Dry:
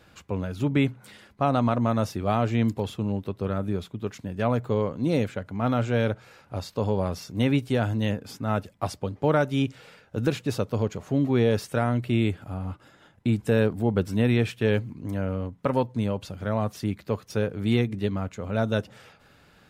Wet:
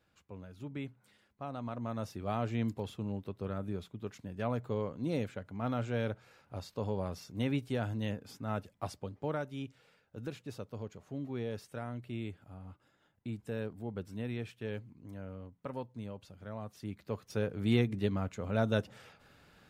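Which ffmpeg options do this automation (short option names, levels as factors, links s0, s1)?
-af "volume=1.19,afade=t=in:st=1.57:d=0.85:silence=0.375837,afade=t=out:st=8.88:d=0.66:silence=0.473151,afade=t=in:st=16.7:d=1.08:silence=0.266073"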